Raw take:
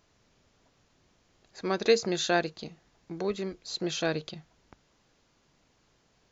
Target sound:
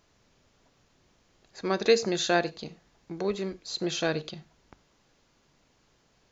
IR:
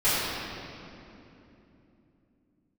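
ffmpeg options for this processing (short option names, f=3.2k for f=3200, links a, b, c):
-filter_complex "[0:a]asplit=2[a][b];[1:a]atrim=start_sample=2205,atrim=end_sample=6174,asetrate=57330,aresample=44100[c];[b][c]afir=irnorm=-1:irlink=0,volume=-27.5dB[d];[a][d]amix=inputs=2:normalize=0,volume=1dB"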